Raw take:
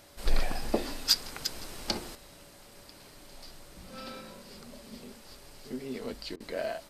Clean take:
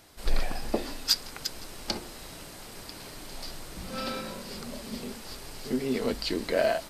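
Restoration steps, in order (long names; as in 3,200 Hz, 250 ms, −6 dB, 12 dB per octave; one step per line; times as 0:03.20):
notch filter 570 Hz, Q 30
repair the gap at 0:06.36, 41 ms
level correction +9 dB, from 0:02.15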